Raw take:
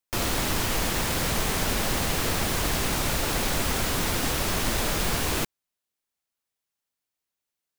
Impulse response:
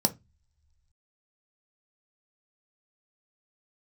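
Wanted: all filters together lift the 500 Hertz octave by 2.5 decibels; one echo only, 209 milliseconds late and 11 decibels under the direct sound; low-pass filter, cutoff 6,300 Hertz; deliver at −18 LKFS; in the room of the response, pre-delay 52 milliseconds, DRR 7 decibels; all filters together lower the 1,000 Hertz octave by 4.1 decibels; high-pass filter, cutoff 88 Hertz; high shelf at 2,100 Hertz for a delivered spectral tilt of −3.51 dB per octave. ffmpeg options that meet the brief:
-filter_complex "[0:a]highpass=88,lowpass=6300,equalizer=frequency=500:width_type=o:gain=5,equalizer=frequency=1000:width_type=o:gain=-8,highshelf=frequency=2100:gain=3.5,aecho=1:1:209:0.282,asplit=2[link_01][link_02];[1:a]atrim=start_sample=2205,adelay=52[link_03];[link_02][link_03]afir=irnorm=-1:irlink=0,volume=-15.5dB[link_04];[link_01][link_04]amix=inputs=2:normalize=0,volume=6.5dB"

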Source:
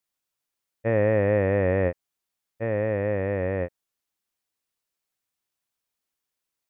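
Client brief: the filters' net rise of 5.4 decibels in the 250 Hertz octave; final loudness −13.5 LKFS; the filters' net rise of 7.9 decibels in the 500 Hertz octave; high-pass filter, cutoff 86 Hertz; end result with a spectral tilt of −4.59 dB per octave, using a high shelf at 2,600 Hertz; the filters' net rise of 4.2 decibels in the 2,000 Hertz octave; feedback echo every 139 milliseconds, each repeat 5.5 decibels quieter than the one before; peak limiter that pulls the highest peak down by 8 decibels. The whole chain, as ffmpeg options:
ffmpeg -i in.wav -af "highpass=86,equalizer=frequency=250:width_type=o:gain=5,equalizer=frequency=500:width_type=o:gain=7.5,equalizer=frequency=2000:width_type=o:gain=5.5,highshelf=frequency=2600:gain=-3.5,alimiter=limit=-14dB:level=0:latency=1,aecho=1:1:139|278|417|556|695|834|973:0.531|0.281|0.149|0.079|0.0419|0.0222|0.0118,volume=9dB" out.wav

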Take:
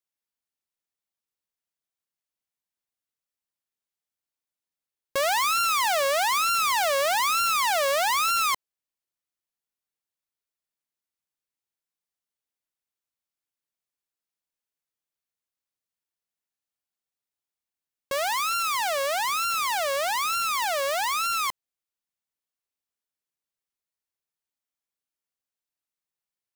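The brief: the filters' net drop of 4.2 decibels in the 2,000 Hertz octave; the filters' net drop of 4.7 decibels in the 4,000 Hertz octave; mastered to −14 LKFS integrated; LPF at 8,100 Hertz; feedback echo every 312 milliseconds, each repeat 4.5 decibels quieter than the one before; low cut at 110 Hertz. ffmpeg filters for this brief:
ffmpeg -i in.wav -af "highpass=110,lowpass=8100,equalizer=frequency=2000:width_type=o:gain=-4,equalizer=frequency=4000:width_type=o:gain=-4.5,aecho=1:1:312|624|936|1248|1560|1872|2184|2496|2808:0.596|0.357|0.214|0.129|0.0772|0.0463|0.0278|0.0167|0.01,volume=11dB" out.wav

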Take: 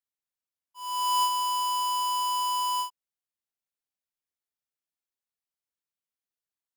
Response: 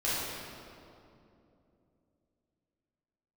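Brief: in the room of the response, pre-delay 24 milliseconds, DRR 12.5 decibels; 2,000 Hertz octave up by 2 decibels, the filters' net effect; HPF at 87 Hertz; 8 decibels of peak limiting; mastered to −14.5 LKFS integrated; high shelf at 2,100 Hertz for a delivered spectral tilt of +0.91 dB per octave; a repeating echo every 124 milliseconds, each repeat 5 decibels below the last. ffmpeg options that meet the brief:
-filter_complex "[0:a]highpass=87,equalizer=frequency=2000:width_type=o:gain=7,highshelf=frequency=2100:gain=-6.5,alimiter=level_in=3.5dB:limit=-24dB:level=0:latency=1,volume=-3.5dB,aecho=1:1:124|248|372|496|620|744|868:0.562|0.315|0.176|0.0988|0.0553|0.031|0.0173,asplit=2[link_01][link_02];[1:a]atrim=start_sample=2205,adelay=24[link_03];[link_02][link_03]afir=irnorm=-1:irlink=0,volume=-22dB[link_04];[link_01][link_04]amix=inputs=2:normalize=0,volume=17.5dB"

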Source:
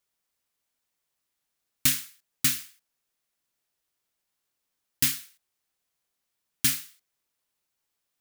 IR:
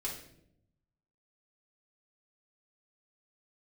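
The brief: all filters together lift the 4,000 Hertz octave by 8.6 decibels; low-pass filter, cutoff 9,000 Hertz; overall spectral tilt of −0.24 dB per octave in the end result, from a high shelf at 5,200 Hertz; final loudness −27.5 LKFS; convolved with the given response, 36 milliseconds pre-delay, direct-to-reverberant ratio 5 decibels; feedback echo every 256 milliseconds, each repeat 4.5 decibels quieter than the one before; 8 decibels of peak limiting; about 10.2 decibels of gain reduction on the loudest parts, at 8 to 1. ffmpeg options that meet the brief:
-filter_complex "[0:a]lowpass=9000,equalizer=frequency=4000:width_type=o:gain=7,highshelf=frequency=5200:gain=8.5,acompressor=threshold=-26dB:ratio=8,alimiter=limit=-15dB:level=0:latency=1,aecho=1:1:256|512|768|1024|1280|1536|1792|2048|2304:0.596|0.357|0.214|0.129|0.0772|0.0463|0.0278|0.0167|0.01,asplit=2[link_01][link_02];[1:a]atrim=start_sample=2205,adelay=36[link_03];[link_02][link_03]afir=irnorm=-1:irlink=0,volume=-6dB[link_04];[link_01][link_04]amix=inputs=2:normalize=0,volume=7.5dB"

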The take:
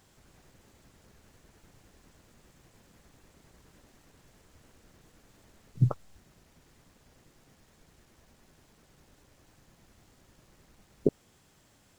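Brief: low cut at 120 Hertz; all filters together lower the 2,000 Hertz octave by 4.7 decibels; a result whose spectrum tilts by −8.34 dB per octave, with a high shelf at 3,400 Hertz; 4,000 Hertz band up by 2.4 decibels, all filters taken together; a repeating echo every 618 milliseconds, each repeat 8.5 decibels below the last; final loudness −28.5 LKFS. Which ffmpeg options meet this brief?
ffmpeg -i in.wav -af "highpass=120,equalizer=frequency=2000:width_type=o:gain=-7,highshelf=frequency=3400:gain=-3.5,equalizer=frequency=4000:width_type=o:gain=7.5,aecho=1:1:618|1236|1854|2472:0.376|0.143|0.0543|0.0206,volume=7.5dB" out.wav

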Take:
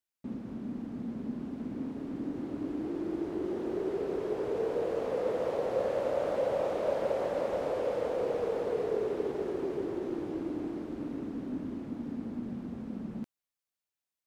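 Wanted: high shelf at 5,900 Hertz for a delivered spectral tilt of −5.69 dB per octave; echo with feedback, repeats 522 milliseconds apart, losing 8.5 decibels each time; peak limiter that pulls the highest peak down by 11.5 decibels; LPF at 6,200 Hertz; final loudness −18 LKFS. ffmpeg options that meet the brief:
ffmpeg -i in.wav -af "lowpass=6200,highshelf=frequency=5900:gain=-7.5,alimiter=level_in=6.5dB:limit=-24dB:level=0:latency=1,volume=-6.5dB,aecho=1:1:522|1044|1566|2088:0.376|0.143|0.0543|0.0206,volume=20dB" out.wav

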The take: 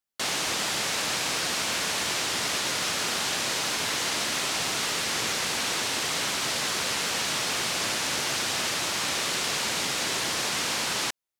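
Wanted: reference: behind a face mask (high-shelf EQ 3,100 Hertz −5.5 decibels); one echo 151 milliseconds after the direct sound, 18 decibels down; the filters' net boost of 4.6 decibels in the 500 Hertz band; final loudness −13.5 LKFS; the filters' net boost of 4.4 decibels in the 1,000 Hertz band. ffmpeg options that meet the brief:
ffmpeg -i in.wav -af "equalizer=frequency=500:width_type=o:gain=4.5,equalizer=frequency=1000:width_type=o:gain=5,highshelf=frequency=3100:gain=-5.5,aecho=1:1:151:0.126,volume=13.5dB" out.wav

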